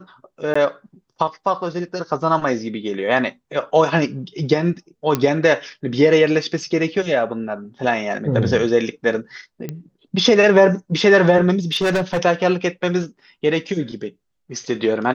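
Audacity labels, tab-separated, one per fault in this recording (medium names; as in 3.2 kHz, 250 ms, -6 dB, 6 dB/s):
0.540000	0.560000	dropout 15 ms
5.150000	5.150000	pop -5 dBFS
9.690000	9.690000	pop -14 dBFS
11.730000	12.190000	clipped -15 dBFS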